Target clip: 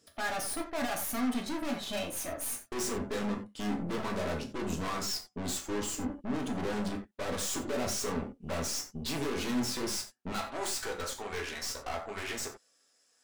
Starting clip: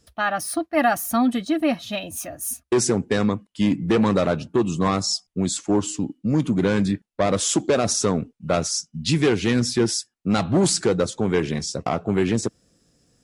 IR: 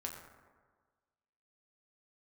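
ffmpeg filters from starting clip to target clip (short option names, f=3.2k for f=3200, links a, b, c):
-filter_complex "[0:a]asetnsamples=n=441:p=0,asendcmd='10.32 highpass f 910',highpass=190,aeval=exprs='(tanh(56.2*val(0)+0.75)-tanh(0.75))/56.2':c=same[a];[1:a]atrim=start_sample=2205,atrim=end_sample=4410[b];[a][b]afir=irnorm=-1:irlink=0,volume=4.5dB"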